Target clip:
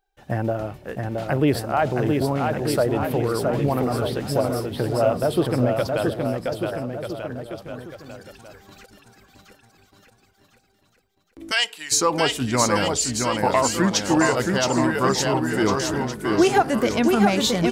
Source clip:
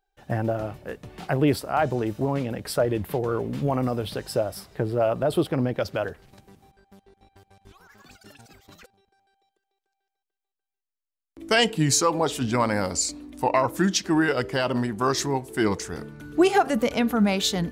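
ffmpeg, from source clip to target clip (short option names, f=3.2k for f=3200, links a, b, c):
-filter_complex "[0:a]asplit=3[a][b][c];[a]afade=t=out:st=11.5:d=0.02[d];[b]highpass=1.3k,afade=t=in:st=11.5:d=0.02,afade=t=out:st=11.91:d=0.02[e];[c]afade=t=in:st=11.91:d=0.02[f];[d][e][f]amix=inputs=3:normalize=0,aecho=1:1:670|1240|1724|2135|2485:0.631|0.398|0.251|0.158|0.1,volume=1.5dB"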